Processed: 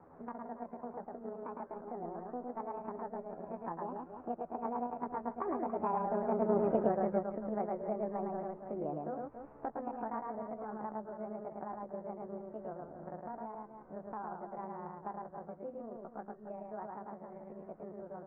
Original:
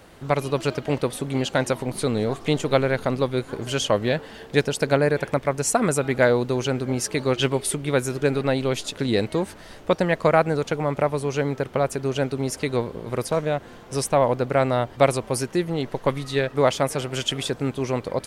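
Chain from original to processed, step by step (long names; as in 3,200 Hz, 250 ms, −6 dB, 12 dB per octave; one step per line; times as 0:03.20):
pitch shift by two crossfaded delay taps +7.5 semitones
source passing by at 0:06.64, 20 m/s, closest 1.3 metres
Bessel low-pass filter 860 Hz, order 8
low-shelf EQ 160 Hz −4 dB
loudspeakers that aren't time-aligned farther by 37 metres −3 dB, 96 metres −12 dB
multiband upward and downward compressor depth 70%
level +15 dB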